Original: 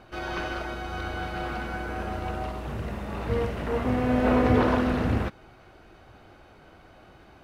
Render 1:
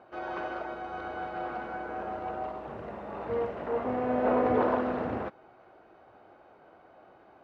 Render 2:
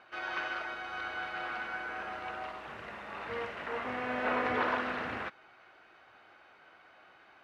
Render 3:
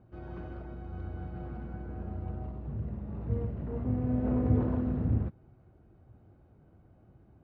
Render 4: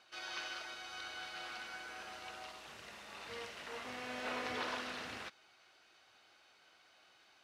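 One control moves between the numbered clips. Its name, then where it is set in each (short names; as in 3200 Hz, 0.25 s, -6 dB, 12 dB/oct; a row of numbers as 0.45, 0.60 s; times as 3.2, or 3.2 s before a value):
band-pass, frequency: 670, 1800, 110, 5300 Hz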